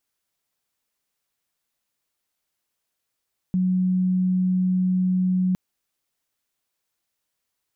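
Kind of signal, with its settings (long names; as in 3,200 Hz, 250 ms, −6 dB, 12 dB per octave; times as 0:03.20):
tone sine 184 Hz −18 dBFS 2.01 s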